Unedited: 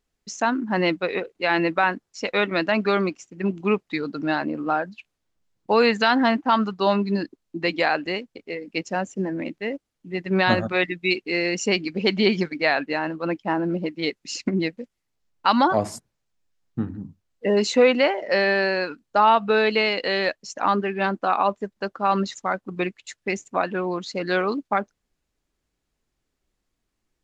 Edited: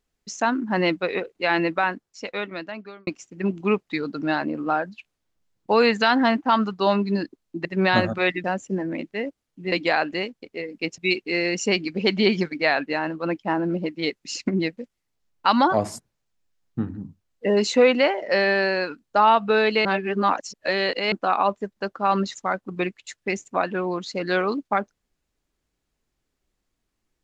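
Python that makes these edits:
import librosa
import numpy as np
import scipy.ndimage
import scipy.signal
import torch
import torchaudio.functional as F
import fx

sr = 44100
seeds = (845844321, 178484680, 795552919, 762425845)

y = fx.edit(x, sr, fx.fade_out_span(start_s=1.49, length_s=1.58),
    fx.swap(start_s=7.65, length_s=1.26, other_s=10.19, other_length_s=0.79),
    fx.reverse_span(start_s=19.85, length_s=1.27), tone=tone)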